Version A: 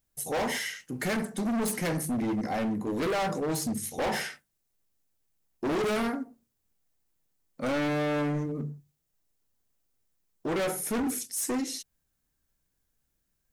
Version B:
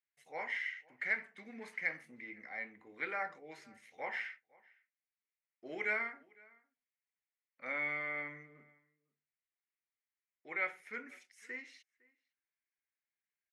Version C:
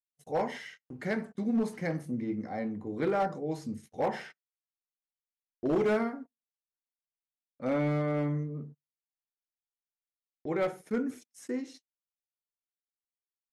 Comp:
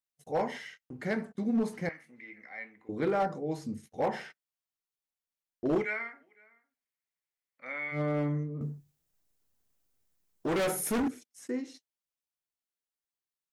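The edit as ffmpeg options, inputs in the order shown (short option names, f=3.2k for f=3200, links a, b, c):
-filter_complex "[1:a]asplit=2[a][b];[2:a]asplit=4[c][d][e][f];[c]atrim=end=1.892[g];[a]atrim=start=1.888:end=2.892[h];[d]atrim=start=2.888:end=5.87[i];[b]atrim=start=5.77:end=8.01[j];[e]atrim=start=7.91:end=8.612[k];[0:a]atrim=start=8.608:end=11.082[l];[f]atrim=start=11.078[m];[g][h]acrossfade=d=0.004:c1=hsin:c2=hsin[n];[n][i]acrossfade=d=0.004:c1=hsin:c2=hsin[o];[o][j]acrossfade=d=0.1:c1=tri:c2=tri[p];[p][k]acrossfade=d=0.1:c1=tri:c2=tri[q];[q][l]acrossfade=d=0.004:c1=hsin:c2=hsin[r];[r][m]acrossfade=d=0.004:c1=hsin:c2=hsin"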